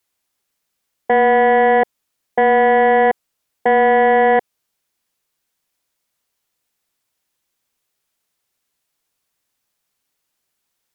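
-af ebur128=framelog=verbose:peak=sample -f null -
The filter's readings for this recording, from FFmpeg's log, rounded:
Integrated loudness:
  I:         -14.3 LUFS
  Threshold: -24.7 LUFS
Loudness range:
  LRA:         6.9 LU
  Threshold: -36.6 LUFS
  LRA low:   -21.5 LUFS
  LRA high:  -14.6 LUFS
Sample peak:
  Peak:       -9.4 dBFS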